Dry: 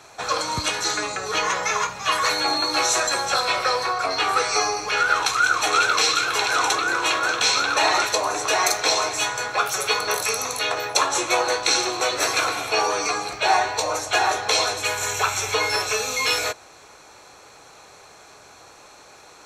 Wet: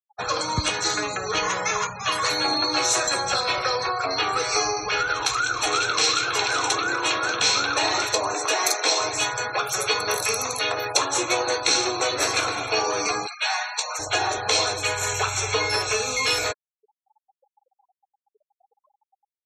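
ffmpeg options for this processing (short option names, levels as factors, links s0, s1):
-filter_complex "[0:a]asettb=1/sr,asplit=3[s0][s1][s2];[s0]atrim=end=8.344[s3];[s1]atrim=start=8.34:end=9,asetpts=PTS-STARTPTS,afade=t=in:d=0.004:c=qsin,afade=t=out:st=0.656:d=0.004:c=qsin,lowshelf=f=150:g=-9[s4];[s2]atrim=start=8.996[s5];[s3][s4]acrossfade=d=0.004:c1=hsin:c2=qsin[s6];[s6][s5]acrossfade=d=0.004:c1=qsin:c2=hsin,asplit=3[s7][s8][s9];[s7]afade=t=out:st=13.26:d=0.02[s10];[s8]highpass=1300,afade=t=in:st=13.26:d=0.02,afade=t=out:st=13.98:d=0.02[s11];[s9]afade=t=in:st=13.98:d=0.02[s12];[s10][s11][s12]amix=inputs=3:normalize=0,afftfilt=real='re*gte(hypot(re,im),0.0251)':imag='im*gte(hypot(re,im),0.0251)':win_size=1024:overlap=0.75,lowshelf=f=200:g=6.5,acrossover=split=420|3000[s13][s14][s15];[s14]acompressor=threshold=0.0708:ratio=6[s16];[s13][s16][s15]amix=inputs=3:normalize=0"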